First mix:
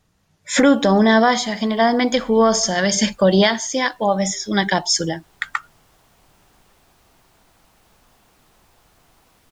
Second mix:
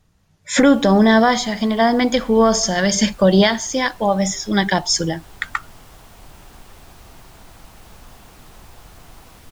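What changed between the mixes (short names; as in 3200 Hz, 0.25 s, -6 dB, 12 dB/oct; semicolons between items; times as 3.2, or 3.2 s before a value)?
first sound +10.5 dB; second sound +11.0 dB; master: add low shelf 120 Hz +8.5 dB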